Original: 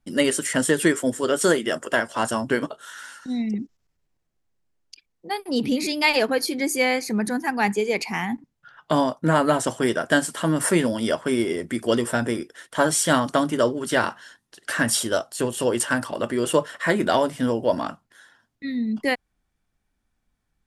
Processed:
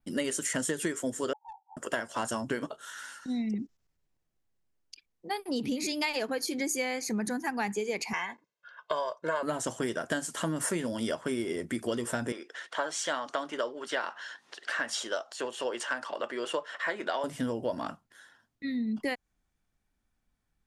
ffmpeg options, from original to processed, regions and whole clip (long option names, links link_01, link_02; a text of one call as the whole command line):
ffmpeg -i in.wav -filter_complex "[0:a]asettb=1/sr,asplit=3[link_01][link_02][link_03];[link_01]atrim=end=1.334[link_04];[link_02]atrim=start=1.33:end=1.77,asetpts=PTS-STARTPTS,afade=type=in:duration=0.004:curve=qsin,afade=type=out:start_time=0.436:duration=0.004:curve=qsin,asuperpass=centerf=850:order=12:qfactor=5,aeval=exprs='clip(val(0),-1,0.015)':channel_layout=same[link_05];[link_03]atrim=start=1.766[link_06];[link_04][link_05]acrossfade=duration=0.004:curve1=hsin:curve2=qsin[link_07];[link_07][link_06]acrossfade=duration=0.004:curve1=qsin:curve2=hsin,asettb=1/sr,asplit=3[link_08][link_09][link_10];[link_08]atrim=end=8.134[link_11];[link_09]atrim=start=8.13:end=9.43,asetpts=PTS-STARTPTS,afade=type=in:duration=0.004:curve=qsin,afade=type=out:start_time=1.296:duration=0.004:curve=qsin,highpass=460,lowpass=5000,aecho=1:1:1.9:0.86,atrim=end_sample=57330[link_12];[link_10]atrim=start=9.426[link_13];[link_11][link_12]acrossfade=duration=0.004:curve1=hsin:curve2=qsin[link_14];[link_14][link_13]acrossfade=duration=0.004:curve1=qsin:curve2=hsin,asettb=1/sr,asplit=3[link_15][link_16][link_17];[link_15]atrim=end=12.324[link_18];[link_16]atrim=start=12.32:end=17.24,asetpts=PTS-STARTPTS,afade=type=in:duration=0.004:curve=qsin,afade=type=out:start_time=4.916:duration=0.004:curve=qsin,acompressor=mode=upward:threshold=-27dB:ratio=2.5:attack=3.2:release=140:knee=2.83:detection=peak,highpass=530,lowpass=4400[link_19];[link_17]atrim=start=17.236[link_20];[link_18][link_19]acrossfade=duration=0.004:curve1=hsin:curve2=qsin[link_21];[link_21][link_20]acrossfade=duration=0.004:curve1=qsin:curve2=hsin,adynamicequalizer=threshold=0.00398:dfrequency=6600:dqfactor=3.5:tfrequency=6600:tqfactor=3.5:attack=5:release=100:ratio=0.375:range=4:mode=boostabove:tftype=bell,acompressor=threshold=-24dB:ratio=6,volume=-4dB" out.wav